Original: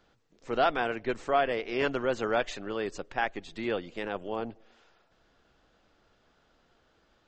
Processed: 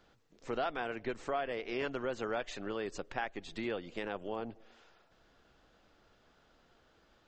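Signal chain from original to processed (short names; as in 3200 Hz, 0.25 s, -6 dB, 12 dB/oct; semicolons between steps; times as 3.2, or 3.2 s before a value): compressor 2.5:1, threshold -36 dBFS, peak gain reduction 10.5 dB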